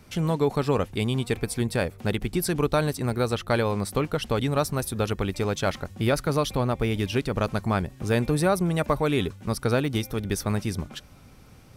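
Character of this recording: noise floor -50 dBFS; spectral tilt -6.0 dB/octave

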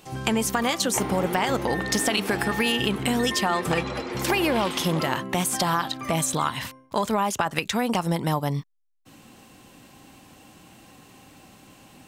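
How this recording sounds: noise floor -53 dBFS; spectral tilt -4.0 dB/octave

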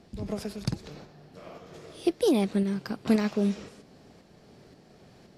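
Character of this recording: tremolo saw up 1.9 Hz, depth 40%; AAC

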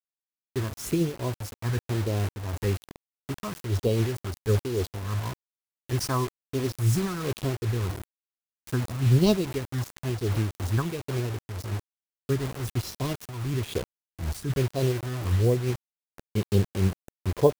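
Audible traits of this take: phasing stages 4, 1.1 Hz, lowest notch 470–1800 Hz; a quantiser's noise floor 6-bit, dither none; random flutter of the level

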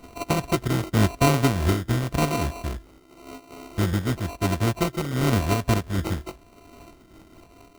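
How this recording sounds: a buzz of ramps at a fixed pitch in blocks of 64 samples; phasing stages 4, 0.94 Hz, lowest notch 660–2500 Hz; aliases and images of a low sample rate 1.7 kHz, jitter 0%; random flutter of the level

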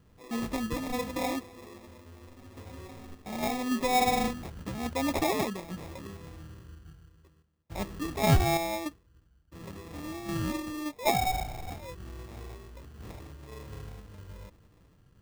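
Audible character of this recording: phasing stages 4, 0.83 Hz, lowest notch 610–1400 Hz; aliases and images of a low sample rate 1.5 kHz, jitter 0%; random-step tremolo

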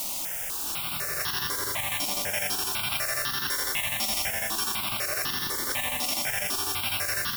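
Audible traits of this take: a buzz of ramps at a fixed pitch in blocks of 8 samples; chopped level 12 Hz, depth 65%, duty 65%; a quantiser's noise floor 6-bit, dither triangular; notches that jump at a steady rate 4 Hz 440–2300 Hz

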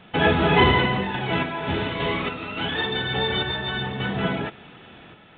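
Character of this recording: random-step tremolo 3.5 Hz; µ-law

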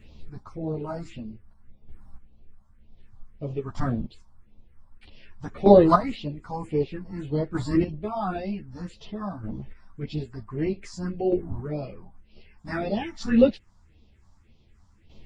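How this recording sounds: phasing stages 4, 1.8 Hz, lowest notch 410–1600 Hz; chopped level 0.53 Hz, depth 65%, duty 15%; a shimmering, thickened sound

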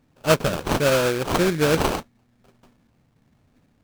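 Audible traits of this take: phasing stages 8, 1.2 Hz, lowest notch 720–2600 Hz; aliases and images of a low sample rate 2 kHz, jitter 20%; Nellymoser

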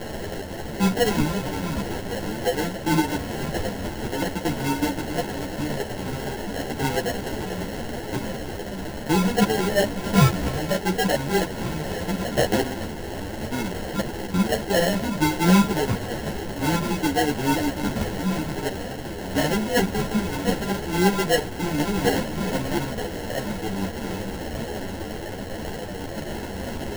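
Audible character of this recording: a quantiser's noise floor 6-bit, dither triangular; phasing stages 4, 0.48 Hz, lowest notch 410–1400 Hz; aliases and images of a low sample rate 1.2 kHz, jitter 0%; a shimmering, thickened sound

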